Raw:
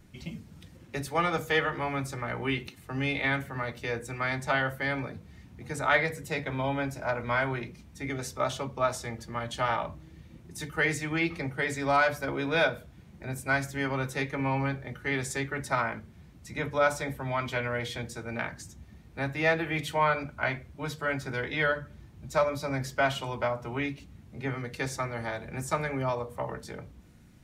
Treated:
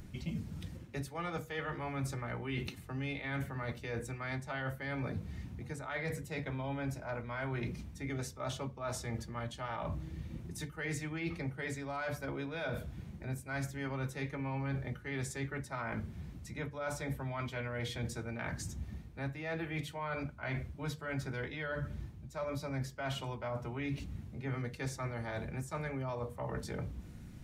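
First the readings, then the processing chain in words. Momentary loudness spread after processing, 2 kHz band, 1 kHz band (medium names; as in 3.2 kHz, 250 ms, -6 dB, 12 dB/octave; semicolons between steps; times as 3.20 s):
5 LU, -12.0 dB, -12.0 dB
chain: reverse; compression 6:1, threshold -40 dBFS, peak gain reduction 19.5 dB; reverse; bass shelf 230 Hz +7 dB; upward compressor, threshold -56 dBFS; trim +1.5 dB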